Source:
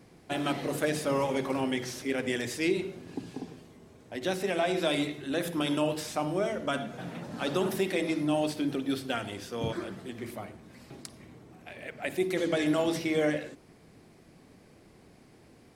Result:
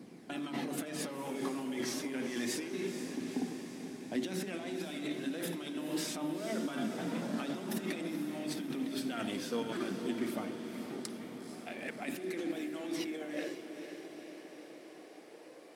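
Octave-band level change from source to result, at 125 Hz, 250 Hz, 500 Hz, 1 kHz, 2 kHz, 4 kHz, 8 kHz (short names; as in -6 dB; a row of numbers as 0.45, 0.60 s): -9.0, -4.5, -9.5, -9.0, -8.0, -6.5, -2.0 dB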